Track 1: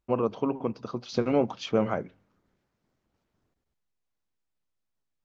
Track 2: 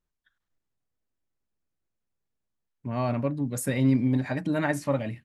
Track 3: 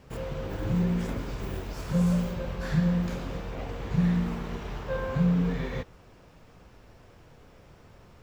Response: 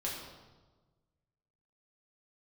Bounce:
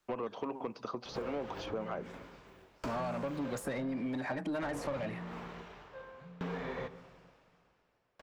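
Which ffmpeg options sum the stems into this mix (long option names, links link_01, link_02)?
-filter_complex "[0:a]volume=-7.5dB[link_01];[1:a]acompressor=threshold=-27dB:ratio=6,asoftclip=type=tanh:threshold=-25dB,volume=0dB[link_02];[2:a]highshelf=frequency=4500:gain=-6,aeval=exprs='val(0)*pow(10,-34*if(lt(mod(0.56*n/s,1),2*abs(0.56)/1000),1-mod(0.56*n/s,1)/(2*abs(0.56)/1000),(mod(0.56*n/s,1)-2*abs(0.56)/1000)/(1-2*abs(0.56)/1000))/20)':channel_layout=same,adelay=1050,volume=-0.5dB,asplit=2[link_03][link_04];[link_04]volume=-21dB[link_05];[link_01][link_03]amix=inputs=2:normalize=0,acompressor=threshold=-41dB:ratio=2,volume=0dB[link_06];[3:a]atrim=start_sample=2205[link_07];[link_05][link_07]afir=irnorm=-1:irlink=0[link_08];[link_02][link_06][link_08]amix=inputs=3:normalize=0,asplit=2[link_09][link_10];[link_10]highpass=frequency=720:poles=1,volume=19dB,asoftclip=type=tanh:threshold=-20.5dB[link_11];[link_09][link_11]amix=inputs=2:normalize=0,lowpass=frequency=5400:poles=1,volume=-6dB,acrossover=split=280|1300[link_12][link_13][link_14];[link_12]acompressor=threshold=-44dB:ratio=4[link_15];[link_13]acompressor=threshold=-36dB:ratio=4[link_16];[link_14]acompressor=threshold=-50dB:ratio=4[link_17];[link_15][link_16][link_17]amix=inputs=3:normalize=0"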